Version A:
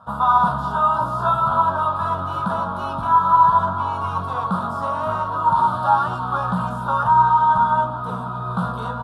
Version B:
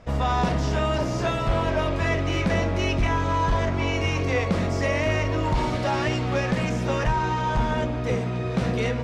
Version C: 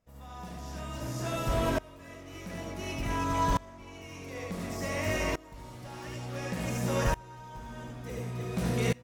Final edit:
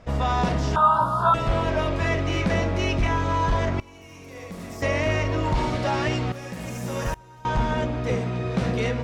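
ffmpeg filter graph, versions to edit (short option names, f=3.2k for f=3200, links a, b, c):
-filter_complex "[2:a]asplit=2[a][b];[1:a]asplit=4[c][d][e][f];[c]atrim=end=0.762[g];[0:a]atrim=start=0.758:end=1.342[h];[d]atrim=start=1.338:end=3.802[i];[a]atrim=start=3.798:end=4.822[j];[e]atrim=start=4.818:end=6.322[k];[b]atrim=start=6.318:end=7.452[l];[f]atrim=start=7.448[m];[g][h]acrossfade=d=0.004:c1=hsin:c2=hsin[n];[n][i]acrossfade=d=0.004:c1=hsin:c2=hsin[o];[o][j]acrossfade=d=0.004:c1=hsin:c2=hsin[p];[p][k]acrossfade=d=0.004:c1=hsin:c2=hsin[q];[q][l]acrossfade=d=0.004:c1=hsin:c2=hsin[r];[r][m]acrossfade=d=0.004:c1=hsin:c2=hsin"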